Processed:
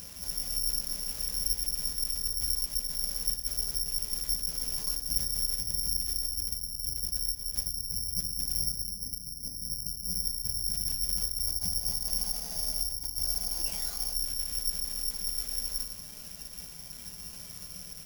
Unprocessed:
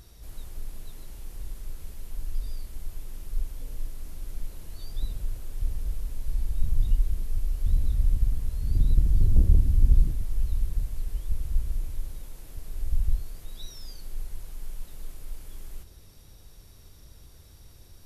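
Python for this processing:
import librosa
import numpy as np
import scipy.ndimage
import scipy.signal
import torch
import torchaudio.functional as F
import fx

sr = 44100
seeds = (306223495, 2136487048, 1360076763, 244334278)

y = fx.formant_shift(x, sr, semitones=6)
y = fx.low_shelf(y, sr, hz=170.0, db=-5.0)
y = y + 0.33 * np.pad(y, (int(6.7 * sr / 1000.0), 0))[:len(y)]
y = fx.over_compress(y, sr, threshold_db=-34.0, ratio=-1.0)
y = fx.spec_box(y, sr, start_s=11.48, length_s=2.66, low_hz=440.0, high_hz=1100.0, gain_db=9)
y = fx.pitch_keep_formants(y, sr, semitones=6.5)
y = fx.comb_fb(y, sr, f0_hz=120.0, decay_s=0.67, harmonics='all', damping=0.0, mix_pct=70)
y = fx.cheby_harmonics(y, sr, harmonics=(5,), levels_db=(-20,), full_scale_db=-30.5)
y = fx.rev_fdn(y, sr, rt60_s=0.46, lf_ratio=1.5, hf_ratio=0.65, size_ms=33.0, drr_db=3.0)
y = (np.kron(y[::8], np.eye(8)[0]) * 8)[:len(y)]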